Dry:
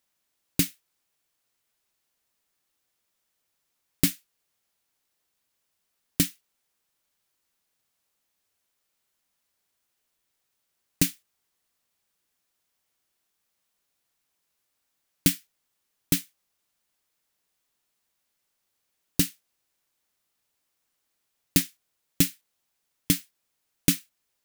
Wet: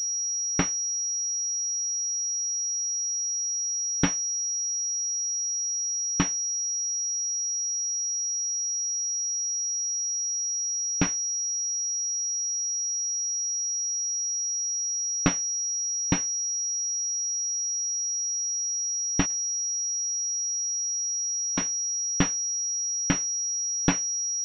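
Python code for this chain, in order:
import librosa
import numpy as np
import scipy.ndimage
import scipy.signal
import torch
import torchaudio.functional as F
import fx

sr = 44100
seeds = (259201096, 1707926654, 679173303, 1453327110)

y = fx.step_gate(x, sr, bpm=178, pattern='x.x.x.xx.', floor_db=-60.0, edge_ms=4.5, at=(19.25, 21.59), fade=0.02)
y = fx.pwm(y, sr, carrier_hz=5700.0)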